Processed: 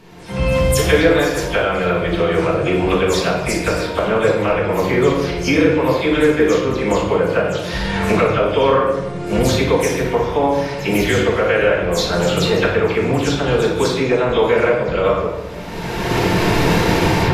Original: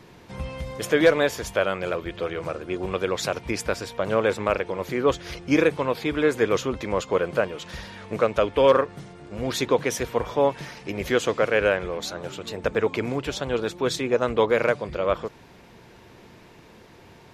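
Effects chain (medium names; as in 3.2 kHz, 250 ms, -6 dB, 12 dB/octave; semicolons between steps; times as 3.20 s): delay that grows with frequency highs early, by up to 103 ms; recorder AGC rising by 26 dB/s; flutter echo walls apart 9.8 m, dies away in 0.26 s; simulated room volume 520 m³, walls mixed, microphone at 1.6 m; trim +1.5 dB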